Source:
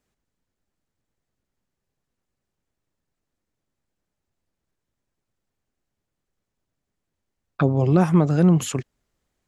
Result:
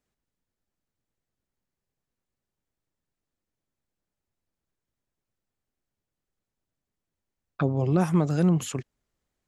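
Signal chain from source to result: 7.98–8.48 s: treble shelf 5.9 kHz -> 3.6 kHz +9.5 dB; trim -5.5 dB

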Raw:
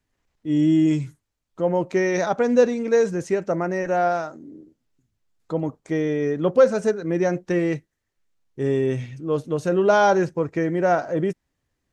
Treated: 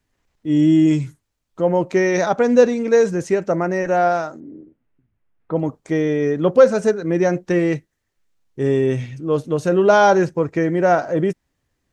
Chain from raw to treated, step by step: 4.40–5.56 s: low-pass 2.5 kHz 24 dB/octave; trim +4 dB

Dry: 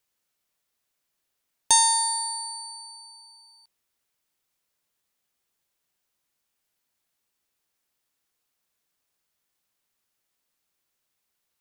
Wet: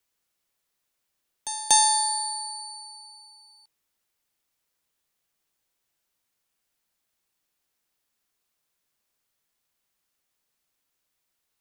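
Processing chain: pre-echo 239 ms -14.5 dB; frequency shift -49 Hz

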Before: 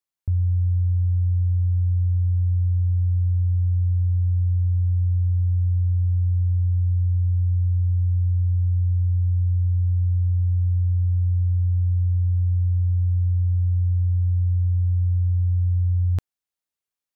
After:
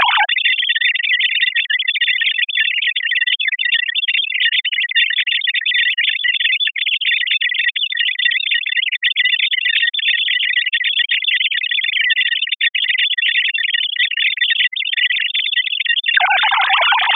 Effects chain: formants replaced by sine waves; reverb removal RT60 1.7 s; trim +5 dB

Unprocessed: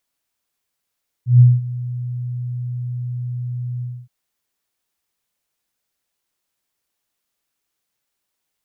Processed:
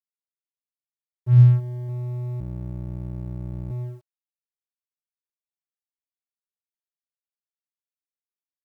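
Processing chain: 2.40–3.71 s: cycle switcher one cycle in 2, muted; bit crusher 11-bit; 1.34–1.89 s: bass shelf 110 Hz -3 dB; crossover distortion -34.5 dBFS

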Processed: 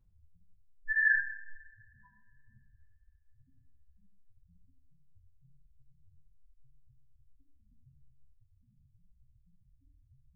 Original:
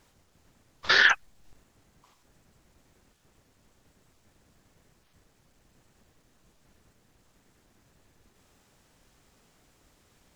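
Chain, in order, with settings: tilt shelf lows +3.5 dB, about 660 Hz; loudest bins only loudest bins 1; two-slope reverb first 0.69 s, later 2.9 s, from -28 dB, DRR -7.5 dB; trim +1 dB

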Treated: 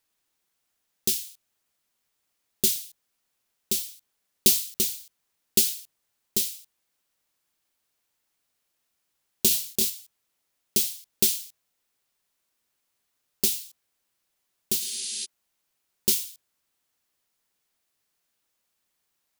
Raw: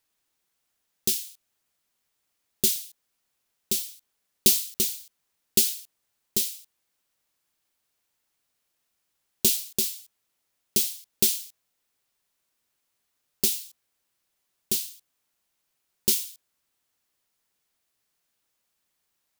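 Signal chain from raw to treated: 14.83–15.23 s: spectral replace 200–11000 Hz before; hum notches 50/100/150 Hz; 9.48–9.90 s: doubling 27 ms -3.5 dB

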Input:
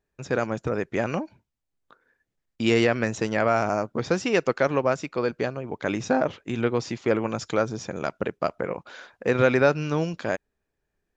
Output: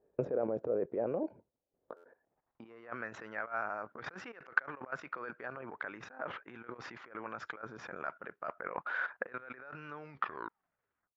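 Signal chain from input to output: tape stop on the ending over 1.21 s; low-pass 2.1 kHz 6 dB/octave; tilt EQ -1.5 dB/octave; level held to a coarse grid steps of 10 dB; transient shaper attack +4 dB, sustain -3 dB; compressor with a negative ratio -38 dBFS, ratio -1; band-pass sweep 510 Hz -> 1.5 kHz, 1.82–3.12 s; buffer glitch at 1.96 s, samples 512, times 6; trim +8 dB

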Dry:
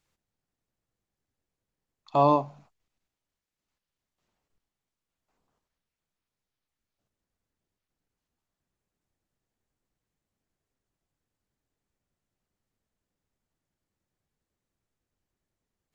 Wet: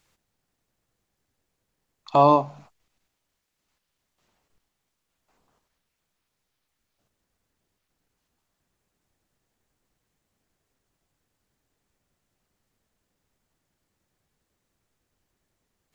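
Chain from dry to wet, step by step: in parallel at 0 dB: compression, threshold -33 dBFS, peak gain reduction 15 dB; on the sum: bass shelf 440 Hz -3 dB; trim +4 dB

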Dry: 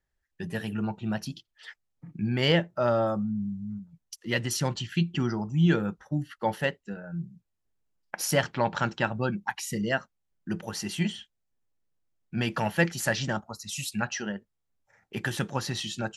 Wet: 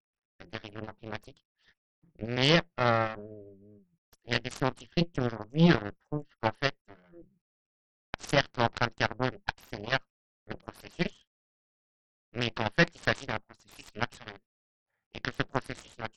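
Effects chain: Chebyshev shaper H 6 -21 dB, 7 -16 dB, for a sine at -10 dBFS; SBC 64 kbps 44.1 kHz

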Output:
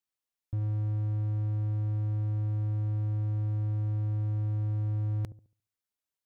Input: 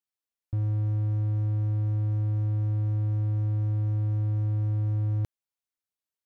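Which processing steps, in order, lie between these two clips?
feedback echo behind a low-pass 70 ms, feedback 31%, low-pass 520 Hz, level -14.5 dB; peak limiter -24.5 dBFS, peak gain reduction 3.5 dB

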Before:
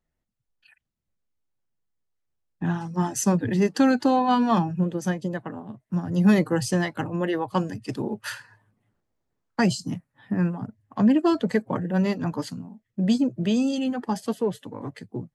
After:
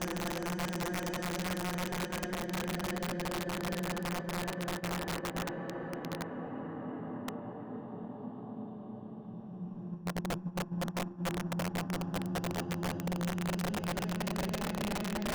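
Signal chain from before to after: single-diode clipper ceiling -18.5 dBFS; Paulstretch 12×, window 0.50 s, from 4.99 s; band-passed feedback delay 227 ms, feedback 83%, band-pass 420 Hz, level -8 dB; in parallel at -2.5 dB: peak limiter -19 dBFS, peak gain reduction 9.5 dB; on the sum: gate -26 dBFS, range -10 dB; reverse; compression 12:1, threshold -32 dBFS, peak gain reduction 19.5 dB; reverse; distance through air 100 m; integer overflow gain 29 dB

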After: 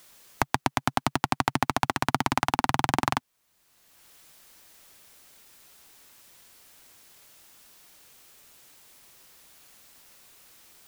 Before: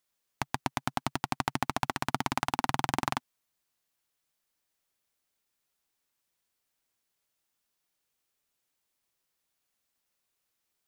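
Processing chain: three bands compressed up and down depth 70%; trim +5.5 dB

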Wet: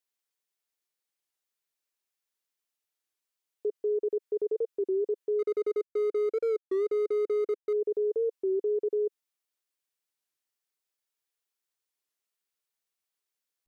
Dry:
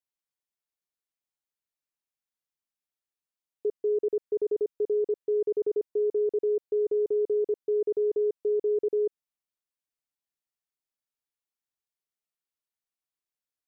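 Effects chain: 5.39–7.73 s: median filter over 41 samples; peaking EQ 410 Hz +7 dB 0.81 oct; peak limiter -21.5 dBFS, peak gain reduction 7 dB; tilt shelf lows -5.5 dB, about 660 Hz; warped record 33 1/3 rpm, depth 160 cents

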